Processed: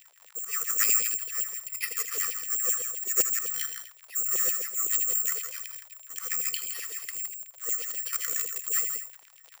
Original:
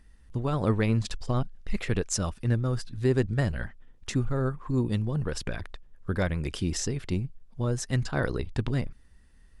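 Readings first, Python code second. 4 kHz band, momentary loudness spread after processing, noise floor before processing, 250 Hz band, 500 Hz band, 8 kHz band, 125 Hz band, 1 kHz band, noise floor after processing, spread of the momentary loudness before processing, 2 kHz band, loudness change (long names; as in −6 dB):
+0.5 dB, 12 LU, −55 dBFS, below −25 dB, −15.5 dB, +13.0 dB, below −35 dB, −6.5 dB, −56 dBFS, 11 LU, −0.5 dB, +3.0 dB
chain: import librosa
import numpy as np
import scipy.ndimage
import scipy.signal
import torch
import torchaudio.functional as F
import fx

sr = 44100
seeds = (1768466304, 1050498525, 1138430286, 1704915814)

y = fx.lower_of_two(x, sr, delay_ms=0.4)
y = fx.auto_swell(y, sr, attack_ms=156.0)
y = fx.brickwall_bandstop(y, sr, low_hz=520.0, high_hz=1100.0)
y = fx.low_shelf(y, sr, hz=470.0, db=-6.5)
y = y + 10.0 ** (-7.0 / 20.0) * np.pad(y, (int(165 * sr / 1000.0), 0))[:len(y)]
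y = (np.kron(scipy.signal.resample_poly(y, 1, 6), np.eye(6)[0]) * 6)[:len(y)]
y = y + 0.62 * np.pad(y, (int(1.6 * sr / 1000.0), 0))[:len(y)]
y = fx.dmg_crackle(y, sr, seeds[0], per_s=58.0, level_db=-35.0)
y = y + 10.0 ** (-10.0 / 20.0) * np.pad(y, (int(78 * sr / 1000.0), 0))[:len(y)]
y = fx.filter_lfo_highpass(y, sr, shape='saw_down', hz=7.8, low_hz=460.0, high_hz=3200.0, q=3.4)
y = y * librosa.db_to_amplitude(-3.0)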